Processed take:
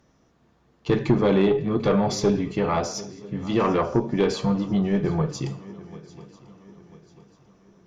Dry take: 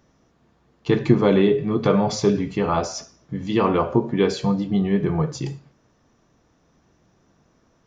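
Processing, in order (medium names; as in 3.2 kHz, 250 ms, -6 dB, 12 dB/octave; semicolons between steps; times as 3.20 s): shuffle delay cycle 993 ms, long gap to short 3:1, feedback 40%, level -20.5 dB; valve stage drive 11 dB, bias 0.35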